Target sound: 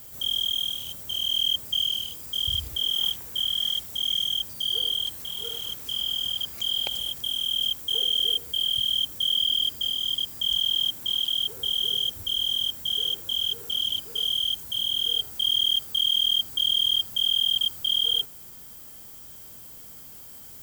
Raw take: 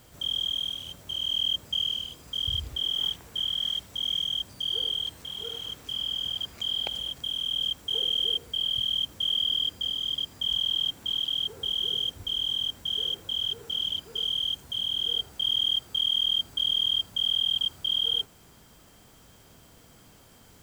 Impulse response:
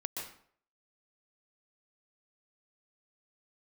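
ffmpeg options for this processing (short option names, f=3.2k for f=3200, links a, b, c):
-af "aemphasis=mode=production:type=50fm"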